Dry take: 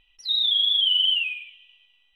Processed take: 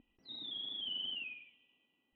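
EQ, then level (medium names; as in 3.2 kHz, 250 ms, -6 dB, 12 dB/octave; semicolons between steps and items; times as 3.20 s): band-pass filter 260 Hz, Q 2.8; distance through air 330 m; +17.0 dB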